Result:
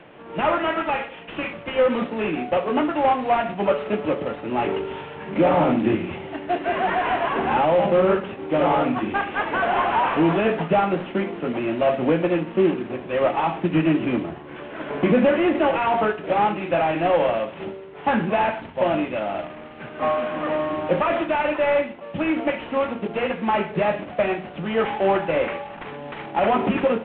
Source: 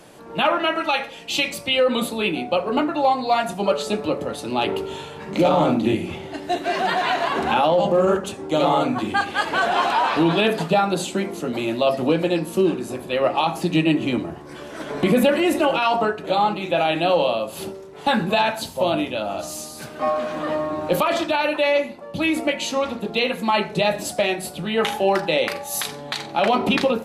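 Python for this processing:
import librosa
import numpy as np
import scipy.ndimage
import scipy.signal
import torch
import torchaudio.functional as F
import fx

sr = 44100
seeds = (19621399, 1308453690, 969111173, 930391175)

y = fx.cvsd(x, sr, bps=16000)
y = fx.low_shelf(y, sr, hz=84.0, db=-6.0)
y = F.gain(torch.from_numpy(y), 1.0).numpy()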